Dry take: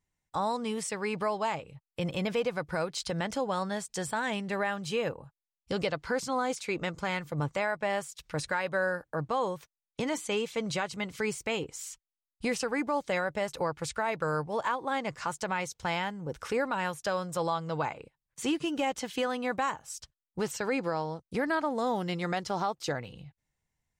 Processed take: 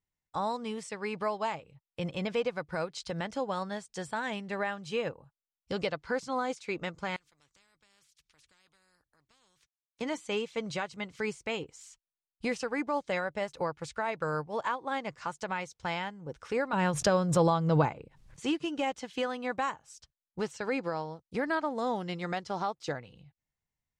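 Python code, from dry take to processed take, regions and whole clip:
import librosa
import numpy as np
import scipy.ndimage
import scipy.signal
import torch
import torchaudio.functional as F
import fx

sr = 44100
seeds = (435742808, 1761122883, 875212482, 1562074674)

y = fx.chain(x, sr, fx.tone_stack(knobs='6-0-2'),
    fx.spectral_comp(ratio=4.0), at=(7.16, 10.01))
y = fx.chain(y, sr, fx.low_shelf(hz=460.0, db=11.5),
    fx.pre_swell(db_per_s=47.0), at=(16.73, 18.4))
y = scipy.signal.sosfilt(scipy.signal.butter(2, 7700.0, 'lowpass', fs=sr, output='sos'), y)
y = fx.upward_expand(y, sr, threshold_db=-41.0, expansion=1.5)
y = y * 10.0 ** (1.5 / 20.0)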